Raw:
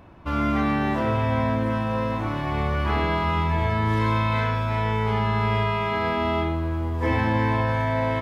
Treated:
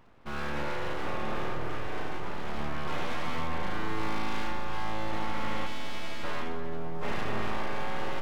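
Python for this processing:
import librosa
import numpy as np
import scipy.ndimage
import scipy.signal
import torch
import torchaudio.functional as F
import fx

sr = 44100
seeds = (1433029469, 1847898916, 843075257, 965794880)

y = fx.highpass(x, sr, hz=900.0, slope=12, at=(5.66, 6.22), fade=0.02)
y = np.abs(y)
y = fx.echo_filtered(y, sr, ms=242, feedback_pct=82, hz=2000.0, wet_db=-11)
y = y * 10.0 ** (-8.0 / 20.0)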